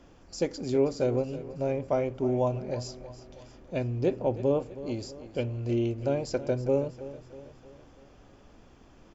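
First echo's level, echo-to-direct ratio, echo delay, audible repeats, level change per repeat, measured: -15.0 dB, -13.5 dB, 321 ms, 4, -6.0 dB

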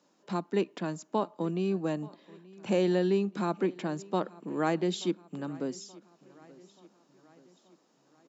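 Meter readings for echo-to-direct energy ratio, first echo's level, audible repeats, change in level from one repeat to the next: -21.0 dB, -22.5 dB, 3, -5.0 dB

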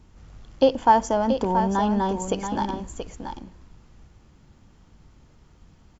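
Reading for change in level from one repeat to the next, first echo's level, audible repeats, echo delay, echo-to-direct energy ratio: no regular repeats, -8.0 dB, 1, 679 ms, -8.0 dB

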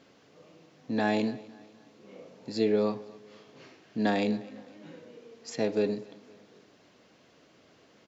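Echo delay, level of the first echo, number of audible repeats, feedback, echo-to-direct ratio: 254 ms, -21.5 dB, 2, 44%, -20.5 dB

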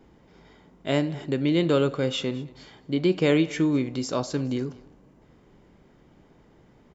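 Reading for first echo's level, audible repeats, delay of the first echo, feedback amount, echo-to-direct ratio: -22.0 dB, 1, 213 ms, no regular repeats, -22.0 dB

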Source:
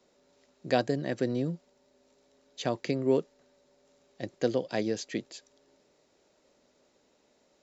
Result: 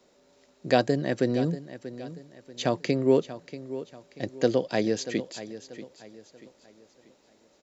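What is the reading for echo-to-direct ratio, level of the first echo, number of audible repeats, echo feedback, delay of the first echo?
-13.5 dB, -14.0 dB, 3, 37%, 636 ms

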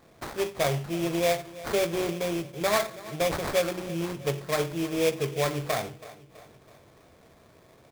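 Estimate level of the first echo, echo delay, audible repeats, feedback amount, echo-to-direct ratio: -18.0 dB, 327 ms, 3, 49%, -17.0 dB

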